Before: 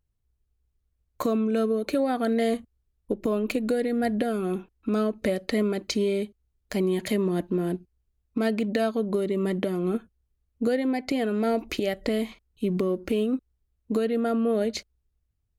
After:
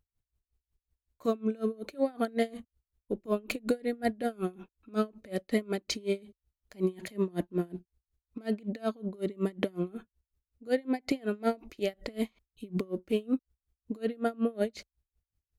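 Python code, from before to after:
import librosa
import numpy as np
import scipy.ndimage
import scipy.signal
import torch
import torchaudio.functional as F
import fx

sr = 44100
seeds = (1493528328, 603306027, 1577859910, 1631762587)

y = x * 10.0 ** (-28 * (0.5 - 0.5 * np.cos(2.0 * np.pi * 5.4 * np.arange(len(x)) / sr)) / 20.0)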